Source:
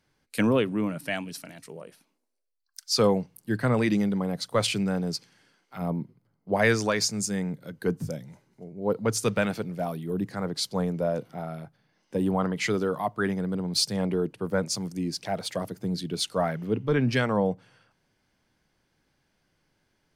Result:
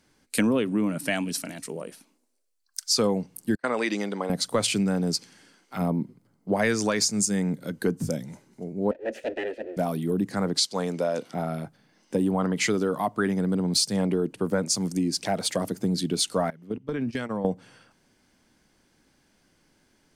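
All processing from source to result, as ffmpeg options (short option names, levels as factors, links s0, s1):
-filter_complex "[0:a]asettb=1/sr,asplit=3[s0][s1][s2];[s0]atrim=end=3.554[s3];[s1]atrim=start=3.55:end=4.3,asetpts=PTS-STARTPTS,afade=t=in:d=0.004:c=qsin,afade=t=out:st=0.746:d=0.004:c=qsin,agate=range=0.0251:threshold=0.0316:ratio=16:release=100:detection=peak,highpass=500,lowpass=7000[s4];[s2]atrim=start=4.296[s5];[s3][s4]acrossfade=d=0.004:c1=hsin:c2=qsin[s6];[s6][s5]acrossfade=d=0.004:c1=qsin:c2=hsin,asettb=1/sr,asplit=3[s7][s8][s9];[s7]atrim=end=8.914[s10];[s8]atrim=start=8.91:end=9.77,asetpts=PTS-STARTPTS,afade=t=in:d=0.004:c=qsin,afade=t=out:st=0.856:d=0.004:c=qsin,equalizer=f=150:t=o:w=2.4:g=11,aeval=exprs='abs(val(0))':c=same,asplit=3[s11][s12][s13];[s11]bandpass=f=530:t=q:w=8,volume=1[s14];[s12]bandpass=f=1840:t=q:w=8,volume=0.501[s15];[s13]bandpass=f=2480:t=q:w=8,volume=0.355[s16];[s14][s15][s16]amix=inputs=3:normalize=0[s17];[s9]atrim=start=9.766[s18];[s10][s17]acrossfade=d=0.004:c1=hsin:c2=qsin[s19];[s19][s18]acrossfade=d=0.004:c1=qsin:c2=hsin,asettb=1/sr,asplit=3[s20][s21][s22];[s20]atrim=end=10.584[s23];[s21]atrim=start=10.58:end=11.34,asetpts=PTS-STARTPTS,afade=t=in:d=0.004:c=qsin,afade=t=out:st=0.756:d=0.004:c=qsin,lowpass=4700,aemphasis=mode=production:type=riaa[s24];[s22]atrim=start=11.336[s25];[s23][s24]acrossfade=d=0.004:c1=hsin:c2=qsin[s26];[s26][s25]acrossfade=d=0.004:c1=qsin:c2=hsin,asettb=1/sr,asplit=3[s27][s28][s29];[s27]atrim=end=16.504[s30];[s28]atrim=start=16.5:end=17.45,asetpts=PTS-STARTPTS,afade=t=in:d=0.004:c=qsin,afade=t=out:st=0.946:d=0.004:c=qsin,agate=range=0.1:threshold=0.0447:ratio=16:release=100:detection=peak,acompressor=threshold=0.0224:ratio=8:attack=3.2:release=140:knee=1:detection=peak[s31];[s29]atrim=start=17.446[s32];[s30][s31]acrossfade=d=0.004:c1=hsin:c2=qsin[s33];[s33][s32]acrossfade=d=0.004:c1=qsin:c2=hsin,equalizer=f=125:t=o:w=1:g=-4,equalizer=f=250:t=o:w=1:g=6,equalizer=f=8000:t=o:w=1:g=7,acompressor=threshold=0.0398:ratio=3,volume=1.88"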